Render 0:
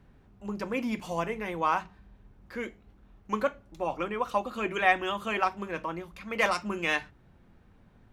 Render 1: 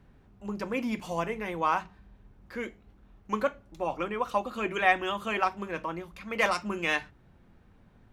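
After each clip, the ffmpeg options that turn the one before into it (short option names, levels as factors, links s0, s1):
-af anull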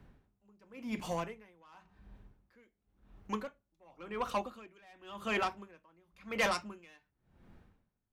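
-filter_complex "[0:a]acrossover=split=310|3200[s0][s1][s2];[s1]asoftclip=type=tanh:threshold=0.0473[s3];[s0][s3][s2]amix=inputs=3:normalize=0,aeval=exprs='val(0)*pow(10,-30*(0.5-0.5*cos(2*PI*0.93*n/s))/20)':c=same"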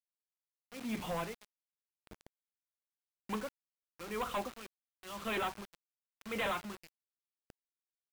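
-af "aresample=8000,asoftclip=type=hard:threshold=0.0211,aresample=44100,acrusher=bits=7:mix=0:aa=0.000001,volume=1.12"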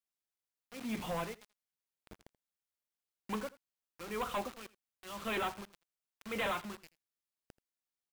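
-af "aecho=1:1:82:0.1"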